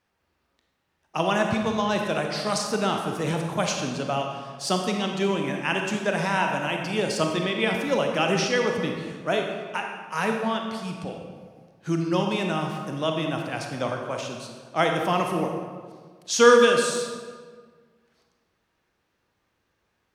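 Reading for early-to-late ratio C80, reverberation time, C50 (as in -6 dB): 4.5 dB, 1.7 s, 3.0 dB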